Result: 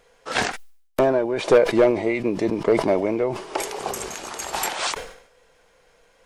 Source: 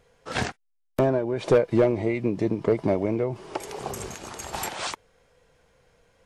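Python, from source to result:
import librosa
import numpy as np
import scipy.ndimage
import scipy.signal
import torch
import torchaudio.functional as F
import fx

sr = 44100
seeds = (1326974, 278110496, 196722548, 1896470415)

y = fx.peak_eq(x, sr, hz=98.0, db=-14.5, octaves=2.3)
y = fx.sustainer(y, sr, db_per_s=88.0)
y = F.gain(torch.from_numpy(y), 6.0).numpy()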